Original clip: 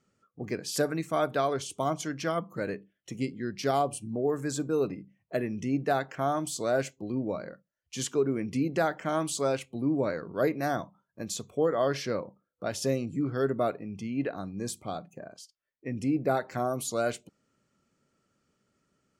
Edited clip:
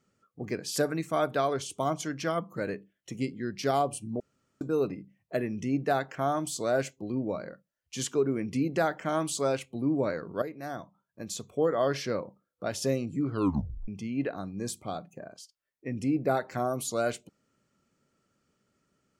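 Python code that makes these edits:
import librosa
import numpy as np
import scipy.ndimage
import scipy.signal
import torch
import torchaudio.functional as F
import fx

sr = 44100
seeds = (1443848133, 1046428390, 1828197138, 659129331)

y = fx.edit(x, sr, fx.room_tone_fill(start_s=4.2, length_s=0.41),
    fx.fade_in_from(start_s=10.42, length_s=1.23, floor_db=-13.0),
    fx.tape_stop(start_s=13.3, length_s=0.58), tone=tone)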